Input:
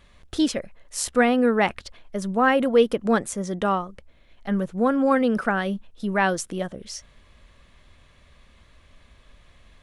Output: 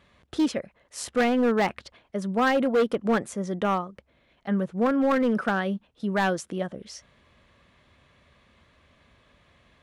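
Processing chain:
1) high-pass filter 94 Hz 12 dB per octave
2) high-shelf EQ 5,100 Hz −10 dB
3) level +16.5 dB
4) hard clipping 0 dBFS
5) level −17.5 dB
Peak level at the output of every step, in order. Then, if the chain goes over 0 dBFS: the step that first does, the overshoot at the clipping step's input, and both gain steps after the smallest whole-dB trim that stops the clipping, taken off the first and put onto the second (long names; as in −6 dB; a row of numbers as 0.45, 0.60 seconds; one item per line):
−7.0, −7.5, +9.0, 0.0, −17.5 dBFS
step 3, 9.0 dB
step 3 +7.5 dB, step 5 −8.5 dB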